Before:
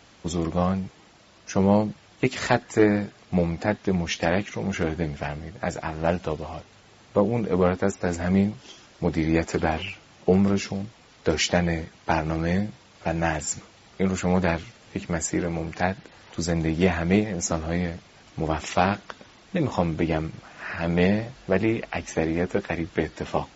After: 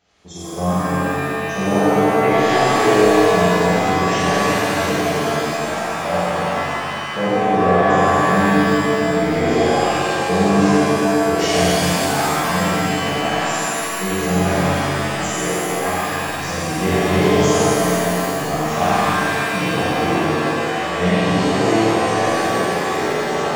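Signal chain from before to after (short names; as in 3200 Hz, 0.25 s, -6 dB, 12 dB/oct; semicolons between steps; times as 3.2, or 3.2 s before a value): spectral noise reduction 8 dB; flutter echo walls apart 7.7 m, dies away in 1 s; shimmer reverb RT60 2.9 s, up +7 st, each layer -2 dB, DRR -9.5 dB; gain -8 dB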